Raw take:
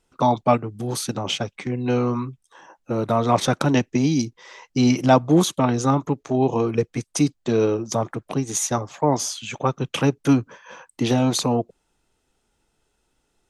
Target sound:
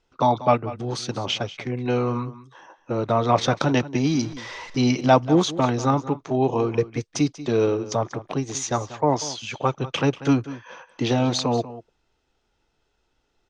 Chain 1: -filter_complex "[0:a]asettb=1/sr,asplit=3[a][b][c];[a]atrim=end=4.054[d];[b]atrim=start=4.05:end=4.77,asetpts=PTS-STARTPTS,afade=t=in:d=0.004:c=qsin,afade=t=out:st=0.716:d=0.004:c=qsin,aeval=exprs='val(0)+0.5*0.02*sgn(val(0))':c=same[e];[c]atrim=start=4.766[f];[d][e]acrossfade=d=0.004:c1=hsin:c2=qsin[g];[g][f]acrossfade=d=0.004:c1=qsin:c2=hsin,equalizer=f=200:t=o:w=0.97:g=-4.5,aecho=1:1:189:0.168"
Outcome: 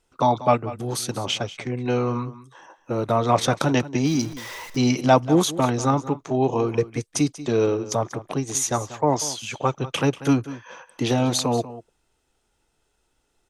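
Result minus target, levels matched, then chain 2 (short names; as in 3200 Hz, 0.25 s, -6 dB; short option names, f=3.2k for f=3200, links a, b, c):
8000 Hz band +5.0 dB
-filter_complex "[0:a]asettb=1/sr,asplit=3[a][b][c];[a]atrim=end=4.054[d];[b]atrim=start=4.05:end=4.77,asetpts=PTS-STARTPTS,afade=t=in:d=0.004:c=qsin,afade=t=out:st=0.716:d=0.004:c=qsin,aeval=exprs='val(0)+0.5*0.02*sgn(val(0))':c=same[e];[c]atrim=start=4.766[f];[d][e]acrossfade=d=0.004:c1=hsin:c2=qsin[g];[g][f]acrossfade=d=0.004:c1=qsin:c2=hsin,lowpass=f=5.9k:w=0.5412,lowpass=f=5.9k:w=1.3066,equalizer=f=200:t=o:w=0.97:g=-4.5,aecho=1:1:189:0.168"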